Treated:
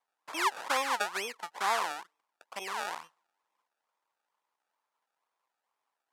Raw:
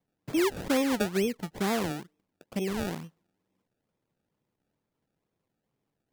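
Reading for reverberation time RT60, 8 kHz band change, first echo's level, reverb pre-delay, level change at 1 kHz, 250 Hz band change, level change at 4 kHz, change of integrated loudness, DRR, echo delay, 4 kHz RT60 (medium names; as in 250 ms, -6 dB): no reverb, -0.5 dB, no echo, no reverb, +6.0 dB, -21.0 dB, +0.5 dB, -3.0 dB, no reverb, no echo, no reverb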